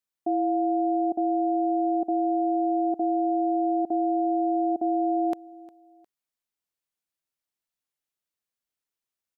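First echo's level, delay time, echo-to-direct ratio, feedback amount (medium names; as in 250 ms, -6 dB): -21.0 dB, 356 ms, -20.5 dB, 32%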